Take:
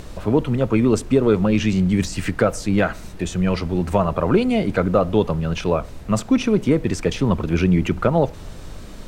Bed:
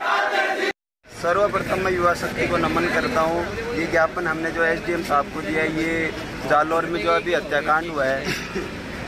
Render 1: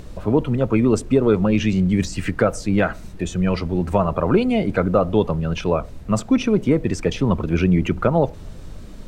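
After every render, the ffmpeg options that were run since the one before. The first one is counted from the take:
-af "afftdn=nr=6:nf=-36"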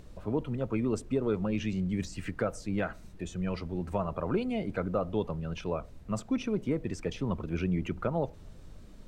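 -af "volume=0.224"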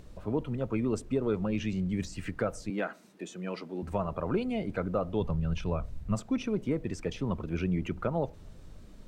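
-filter_complex "[0:a]asettb=1/sr,asplit=3[s0][s1][s2];[s0]atrim=end=2.704[s3];[s1]atrim=start=2.7:end=3.83,asetpts=PTS-STARTPTS,afade=t=in:d=0.004:c=qsin,afade=t=out:st=1.126:d=0.004:c=qsin,highpass=f=210:w=0.5412,highpass=f=210:w=1.3066[s4];[s2]atrim=start=3.826[s5];[s3][s4]acrossfade=d=0.004:c1=hsin:c2=qsin[s6];[s6][s5]acrossfade=d=0.004:c1=qsin:c2=hsin,asplit=3[s7][s8][s9];[s7]afade=t=out:st=5.2:d=0.02[s10];[s8]asubboost=boost=3:cutoff=180,afade=t=in:st=5.2:d=0.02,afade=t=out:st=6.14:d=0.02[s11];[s9]afade=t=in:st=6.14:d=0.02[s12];[s10][s11][s12]amix=inputs=3:normalize=0"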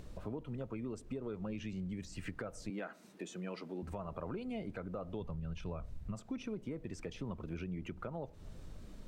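-af "alimiter=limit=0.0708:level=0:latency=1:release=258,acompressor=threshold=0.00794:ratio=2.5"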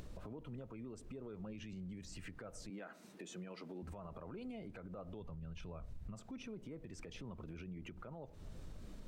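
-af "alimiter=level_in=6.68:limit=0.0631:level=0:latency=1:release=95,volume=0.15,acompressor=mode=upward:threshold=0.002:ratio=2.5"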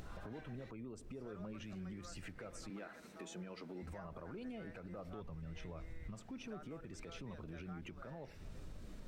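-filter_complex "[1:a]volume=0.0119[s0];[0:a][s0]amix=inputs=2:normalize=0"

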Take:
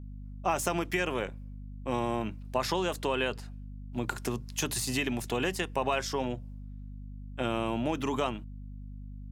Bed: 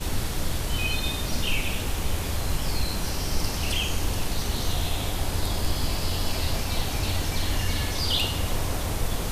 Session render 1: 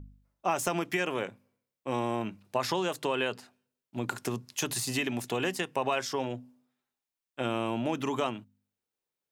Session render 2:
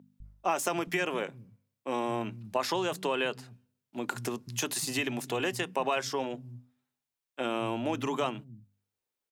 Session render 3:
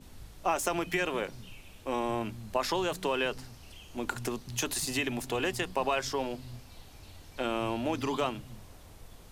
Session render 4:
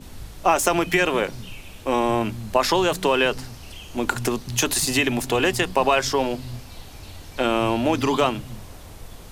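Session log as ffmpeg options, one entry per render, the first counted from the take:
-af "bandreject=f=50:t=h:w=4,bandreject=f=100:t=h:w=4,bandreject=f=150:t=h:w=4,bandreject=f=200:t=h:w=4,bandreject=f=250:t=h:w=4"
-filter_complex "[0:a]acrossover=split=170[s0][s1];[s0]adelay=200[s2];[s2][s1]amix=inputs=2:normalize=0"
-filter_complex "[1:a]volume=0.0631[s0];[0:a][s0]amix=inputs=2:normalize=0"
-af "volume=3.35"

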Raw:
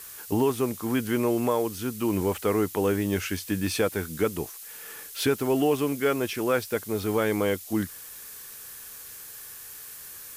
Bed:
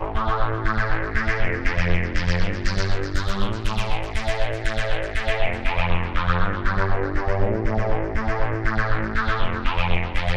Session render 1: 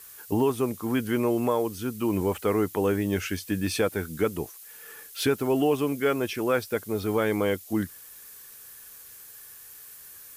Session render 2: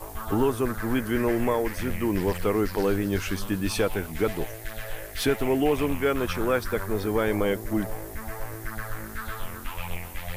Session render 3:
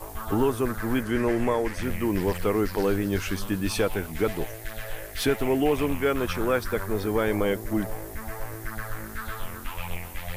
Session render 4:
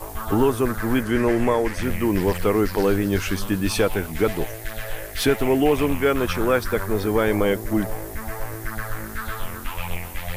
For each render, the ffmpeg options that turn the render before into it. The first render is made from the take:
-af "afftdn=nr=6:nf=-43"
-filter_complex "[1:a]volume=0.237[s0];[0:a][s0]amix=inputs=2:normalize=0"
-filter_complex "[0:a]asettb=1/sr,asplit=3[s0][s1][s2];[s0]atrim=end=1.034[s3];[s1]atrim=start=1.03:end=1.83,asetpts=PTS-STARTPTS,afade=t=in:d=0.004:c=qsin,afade=t=out:st=0.796:d=0.004:c=qsin,lowpass=10000[s4];[s2]atrim=start=1.826[s5];[s3][s4]acrossfade=d=0.004:c1=hsin:c2=qsin[s6];[s6][s5]acrossfade=d=0.004:c1=qsin:c2=hsin"
-af "volume=1.68"

